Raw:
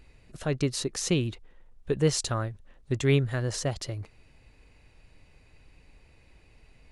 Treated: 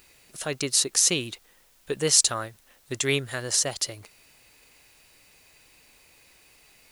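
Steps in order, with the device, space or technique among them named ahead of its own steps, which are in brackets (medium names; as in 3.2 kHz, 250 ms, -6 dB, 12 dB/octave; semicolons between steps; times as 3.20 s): turntable without a phono preamp (RIAA curve recording; white noise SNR 32 dB); trim +2 dB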